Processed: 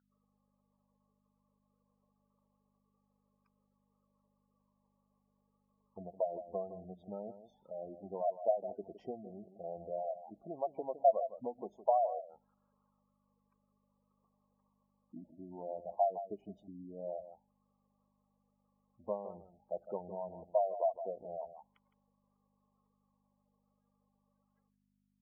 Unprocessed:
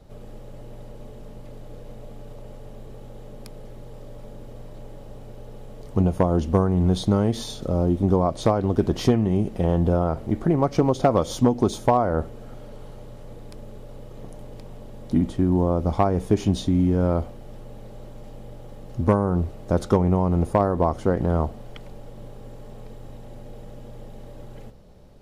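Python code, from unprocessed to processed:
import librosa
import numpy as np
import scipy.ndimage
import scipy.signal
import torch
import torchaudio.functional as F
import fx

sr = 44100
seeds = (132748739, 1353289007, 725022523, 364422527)

p1 = fx.bin_expand(x, sr, power=1.5)
p2 = fx.low_shelf(p1, sr, hz=410.0, db=-5.5)
p3 = p2 + fx.echo_single(p2, sr, ms=162, db=-12.0, dry=0)
p4 = fx.add_hum(p3, sr, base_hz=50, snr_db=13)
p5 = fx.graphic_eq_31(p4, sr, hz=(200, 630, 1250, 4000), db=(7, -3, -4, -12))
p6 = fx.auto_wah(p5, sr, base_hz=660.0, top_hz=1500.0, q=11.0, full_db=-29.0, direction='down')
p7 = fx.spec_gate(p6, sr, threshold_db=-20, keep='strong')
y = F.gain(torch.from_numpy(p7), 4.0).numpy()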